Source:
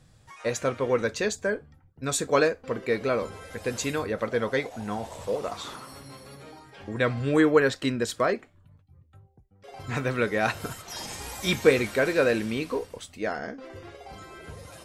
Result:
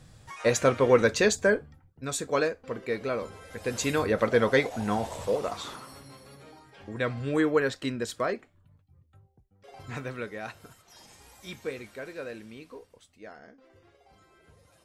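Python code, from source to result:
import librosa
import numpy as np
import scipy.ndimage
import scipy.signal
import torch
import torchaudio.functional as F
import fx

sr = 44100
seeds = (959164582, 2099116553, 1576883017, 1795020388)

y = fx.gain(x, sr, db=fx.line((1.54, 4.5), (2.08, -4.5), (3.44, -4.5), (4.09, 4.0), (4.96, 4.0), (6.17, -4.5), (9.75, -4.5), (10.66, -16.0)))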